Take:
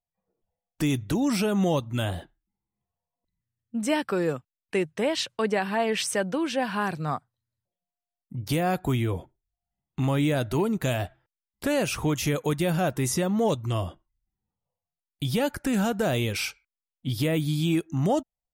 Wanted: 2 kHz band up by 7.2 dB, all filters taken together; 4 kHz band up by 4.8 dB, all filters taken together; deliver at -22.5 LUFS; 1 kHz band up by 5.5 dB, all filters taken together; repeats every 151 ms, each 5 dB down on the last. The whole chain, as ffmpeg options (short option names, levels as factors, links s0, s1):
-af "equalizer=f=1000:t=o:g=6,equalizer=f=2000:t=o:g=6.5,equalizer=f=4000:t=o:g=3.5,aecho=1:1:151|302|453|604|755|906|1057:0.562|0.315|0.176|0.0988|0.0553|0.031|0.0173,volume=1.06"